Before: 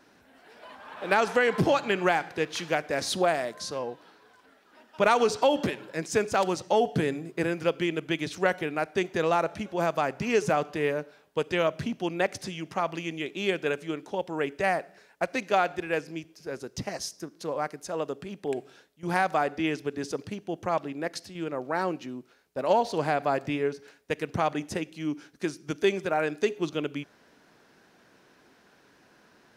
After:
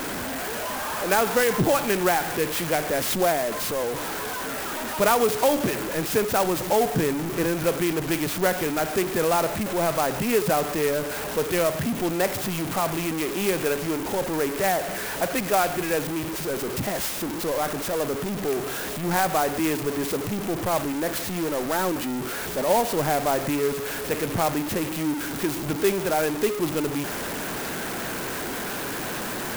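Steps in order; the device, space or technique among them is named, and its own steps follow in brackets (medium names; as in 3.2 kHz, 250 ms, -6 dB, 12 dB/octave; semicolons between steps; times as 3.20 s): early CD player with a faulty converter (jump at every zero crossing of -24.5 dBFS; sampling jitter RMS 0.058 ms)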